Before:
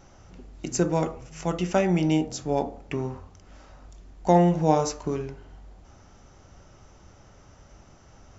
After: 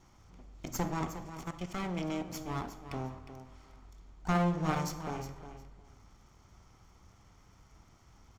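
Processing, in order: comb filter that takes the minimum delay 0.9 ms; 1.31–2.29 s: level held to a coarse grid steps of 14 dB; on a send: feedback delay 359 ms, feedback 18%, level -11 dB; on the sum: algorithmic reverb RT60 0.95 s, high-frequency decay 0.8×, pre-delay 15 ms, DRR 13.5 dB; trim -7.5 dB

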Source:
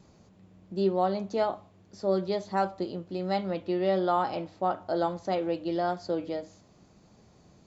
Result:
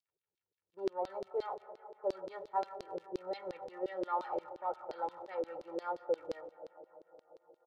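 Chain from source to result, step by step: in parallel at -6.5 dB: saturation -28 dBFS, distortion -9 dB; on the sum: peaking EQ 2.7 kHz -6 dB 1.1 oct; compression, threshold -26 dBFS, peak gain reduction 7 dB; peaking EQ 260 Hz -10.5 dB 1.3 oct; level-controlled noise filter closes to 360 Hz, open at -23.5 dBFS; crackle 83 per s -45 dBFS; comb 2.2 ms, depth 77%; gate -43 dBFS, range -24 dB; reverberation RT60 4.4 s, pre-delay 48 ms, DRR 11 dB; LFO band-pass saw down 5.7 Hz 360–4700 Hz; trim +1 dB

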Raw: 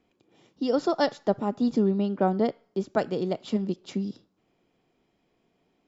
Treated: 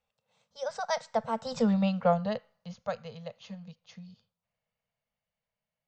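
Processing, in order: Doppler pass-by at 1.74 s, 35 m/s, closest 8.4 m; elliptic band-stop 230–470 Hz; peaking EQ 250 Hz -10 dB 1.1 oct; trim +8 dB

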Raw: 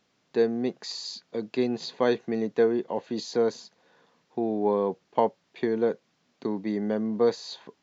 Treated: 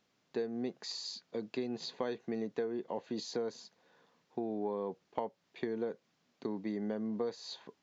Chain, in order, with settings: compression 6:1, threshold -27 dBFS, peak gain reduction 10 dB; trim -5.5 dB

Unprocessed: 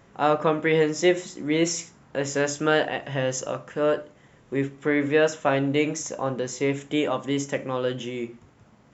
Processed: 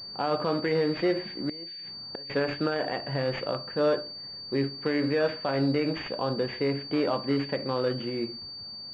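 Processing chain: 1.31–2.30 s: inverted gate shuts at -19 dBFS, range -24 dB; peak limiter -16.5 dBFS, peak gain reduction 10 dB; class-D stage that switches slowly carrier 4.6 kHz

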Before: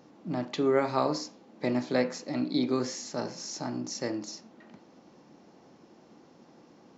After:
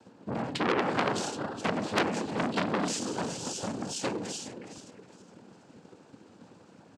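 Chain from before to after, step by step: backward echo that repeats 208 ms, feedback 54%, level -8 dB; transient shaper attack +10 dB, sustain +6 dB; pitch shift -1 st; noise-vocoded speech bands 8; transformer saturation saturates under 3.7 kHz

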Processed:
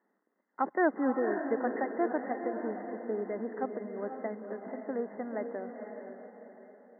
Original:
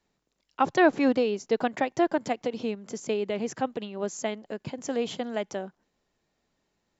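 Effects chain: companding laws mixed up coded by mu; brick-wall FIR band-pass 190–2100 Hz; echo that smears into a reverb 501 ms, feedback 45%, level -6 dB; trim -7 dB

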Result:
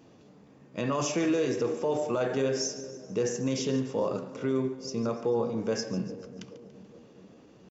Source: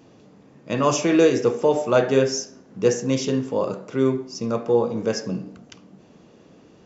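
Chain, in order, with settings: peak limiter -15 dBFS, peak gain reduction 10 dB; two-band feedback delay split 630 Hz, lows 371 ms, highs 128 ms, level -15 dB; tempo 0.89×; trim -4.5 dB

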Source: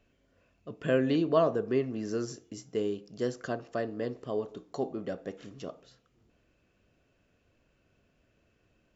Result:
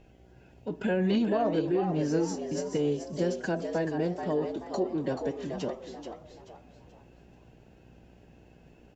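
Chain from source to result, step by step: bass shelf 370 Hz +5 dB; in parallel at +2 dB: compression 12:1, threshold -37 dBFS, peak gain reduction 20 dB; on the sum: peak limiter -18 dBFS, peak gain reduction 8.5 dB; formant-preserving pitch shift +6 st; mains buzz 60 Hz, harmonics 13, -58 dBFS -4 dB/octave; on a send: frequency-shifting echo 432 ms, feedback 33%, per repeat +100 Hz, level -7.5 dB

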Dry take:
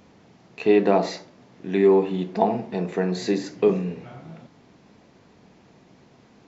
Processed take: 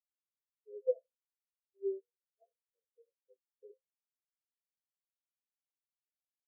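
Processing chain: single-diode clipper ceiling -19 dBFS; hum notches 60/120/180/240/300/360/420/480 Hz; in parallel at -7 dB: small samples zeroed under -20 dBFS; on the sum: vowel filter e; spectral contrast expander 4:1; trim -5.5 dB

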